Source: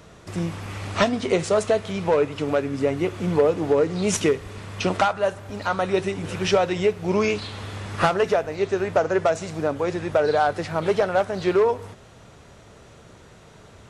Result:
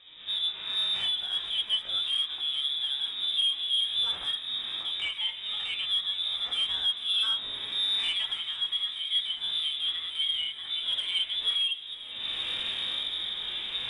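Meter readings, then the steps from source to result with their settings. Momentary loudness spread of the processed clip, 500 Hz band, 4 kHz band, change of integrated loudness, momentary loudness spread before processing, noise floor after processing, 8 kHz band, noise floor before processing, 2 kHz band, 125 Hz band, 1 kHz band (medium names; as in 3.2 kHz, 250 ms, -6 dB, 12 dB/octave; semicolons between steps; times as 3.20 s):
6 LU, under -35 dB, +13.0 dB, -4.5 dB, 9 LU, -41 dBFS, -14.5 dB, -48 dBFS, -9.5 dB, under -25 dB, -22.5 dB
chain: recorder AGC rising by 42 dB/s; chorus 1.7 Hz, delay 15 ms, depth 6.5 ms; rotary cabinet horn 8 Hz, later 0.7 Hz, at 3.05 s; frequency inversion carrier 3.7 kHz; saturation -20.5 dBFS, distortion -15 dB; on a send: feedback echo behind a high-pass 443 ms, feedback 46%, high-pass 2.2 kHz, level -15 dB; on the sum: harmonic-percussive split percussive -17 dB; trim +1 dB; MP3 56 kbps 24 kHz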